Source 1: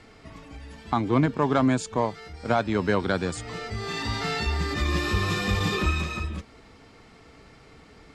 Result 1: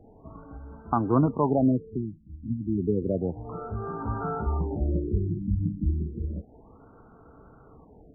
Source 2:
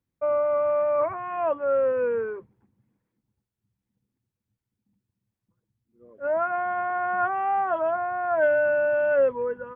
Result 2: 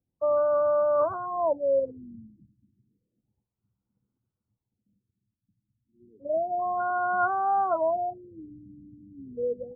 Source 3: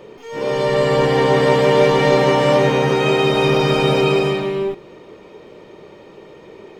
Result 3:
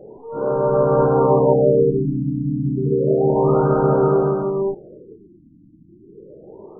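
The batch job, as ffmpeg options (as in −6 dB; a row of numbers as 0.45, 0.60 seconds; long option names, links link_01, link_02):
-af "asuperstop=centerf=2200:order=20:qfactor=1.4,afftfilt=real='re*lt(b*sr/1024,310*pow(2000/310,0.5+0.5*sin(2*PI*0.31*pts/sr)))':imag='im*lt(b*sr/1024,310*pow(2000/310,0.5+0.5*sin(2*PI*0.31*pts/sr)))':win_size=1024:overlap=0.75"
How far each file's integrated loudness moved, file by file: −2.0, −1.5, −2.0 LU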